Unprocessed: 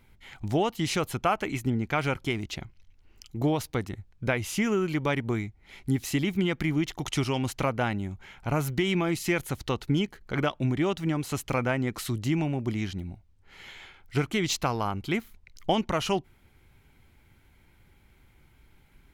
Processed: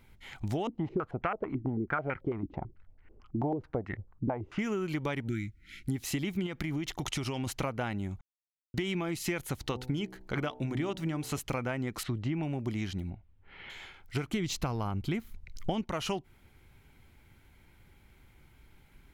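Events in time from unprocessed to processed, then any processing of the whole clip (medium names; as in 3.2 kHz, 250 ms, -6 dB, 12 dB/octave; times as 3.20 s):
0.67–4.59 s: step-sequenced low-pass 9.1 Hz 290–1900 Hz
5.28–5.89 s: brick-wall FIR band-stop 370–1300 Hz
6.46–7.47 s: compression, threshold -27 dBFS
8.21–8.74 s: mute
9.56–11.39 s: de-hum 63.21 Hz, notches 15
12.03–12.43 s: low-pass 2.6 kHz
13.10–13.70 s: low-pass 3.2 kHz 24 dB/octave
14.32–15.84 s: bass shelf 250 Hz +10 dB
whole clip: compression, threshold -29 dBFS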